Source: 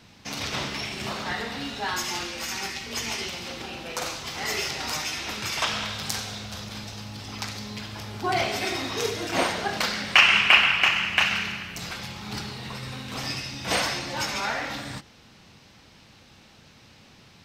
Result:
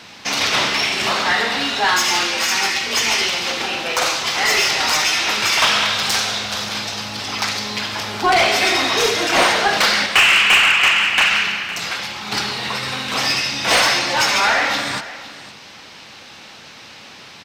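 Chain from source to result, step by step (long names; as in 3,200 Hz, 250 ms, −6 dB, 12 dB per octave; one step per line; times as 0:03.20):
0:10.06–0:12.32: flanger 1.9 Hz, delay 2.2 ms, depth 6.6 ms, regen −56%
mid-hump overdrive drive 22 dB, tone 6,100 Hz, clips at −4 dBFS
single-tap delay 510 ms −16.5 dB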